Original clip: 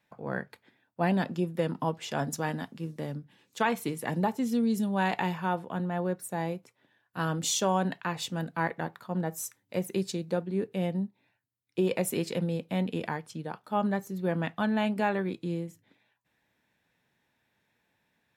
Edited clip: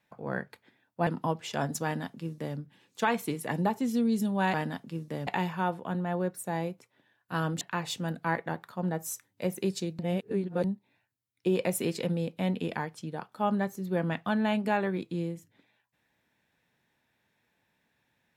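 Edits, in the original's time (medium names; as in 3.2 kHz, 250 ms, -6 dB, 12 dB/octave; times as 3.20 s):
1.07–1.65 s: delete
2.42–3.15 s: copy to 5.12 s
7.46–7.93 s: delete
10.31–10.96 s: reverse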